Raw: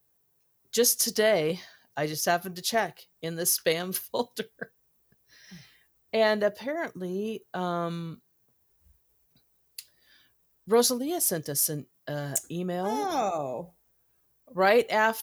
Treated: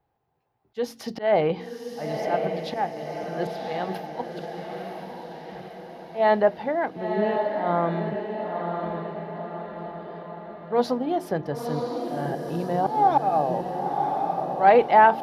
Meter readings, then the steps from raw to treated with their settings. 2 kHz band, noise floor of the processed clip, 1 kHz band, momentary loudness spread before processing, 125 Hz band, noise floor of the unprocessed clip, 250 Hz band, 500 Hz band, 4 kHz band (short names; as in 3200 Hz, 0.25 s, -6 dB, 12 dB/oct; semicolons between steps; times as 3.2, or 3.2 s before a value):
-0.5 dB, -53 dBFS, +9.5 dB, 16 LU, +4.0 dB, -70 dBFS, +3.5 dB, +3.5 dB, -8.5 dB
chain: bell 810 Hz +13 dB 0.38 oct; de-hum 45.42 Hz, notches 8; auto swell 0.189 s; air absorption 390 m; on a send: diffused feedback echo 1.012 s, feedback 54%, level -4.5 dB; on the sum: gain +4.5 dB